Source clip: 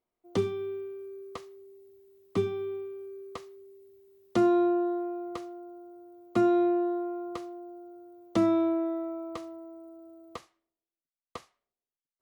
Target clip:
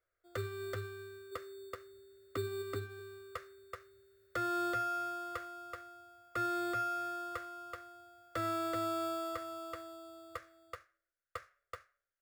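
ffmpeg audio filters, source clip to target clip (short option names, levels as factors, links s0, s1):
-filter_complex "[0:a]asplit=3[s0][s1][s2];[s0]afade=t=out:st=1.31:d=0.02[s3];[s1]equalizer=f=280:t=o:w=0.93:g=13.5,afade=t=in:st=1.31:d=0.02,afade=t=out:st=2.61:d=0.02[s4];[s2]afade=t=in:st=2.61:d=0.02[s5];[s3][s4][s5]amix=inputs=3:normalize=0,asplit=2[s6][s7];[s7]acompressor=threshold=0.0158:ratio=6,volume=1.06[s8];[s6][s8]amix=inputs=2:normalize=0,firequalizer=gain_entry='entry(110,0);entry(170,-26);entry(540,1);entry(850,-19);entry(1400,11);entry(2900,-12)':delay=0.05:min_phase=1,aecho=1:1:379:0.531,acrossover=split=910[s9][s10];[s9]acrusher=samples=11:mix=1:aa=0.000001[s11];[s11][s10]amix=inputs=2:normalize=0,alimiter=limit=0.0631:level=0:latency=1:release=289,volume=0.75"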